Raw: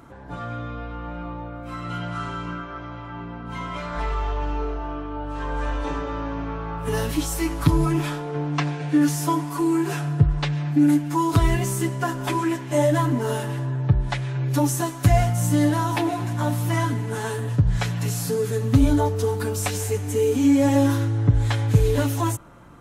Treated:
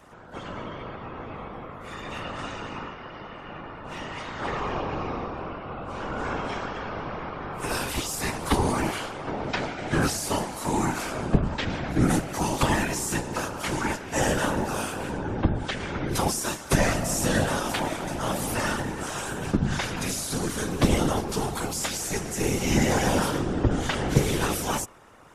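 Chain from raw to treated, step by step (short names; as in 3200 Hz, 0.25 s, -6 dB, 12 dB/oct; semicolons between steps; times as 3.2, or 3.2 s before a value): spectral limiter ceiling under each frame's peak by 17 dB; varispeed -10%; whisperiser; gain -4.5 dB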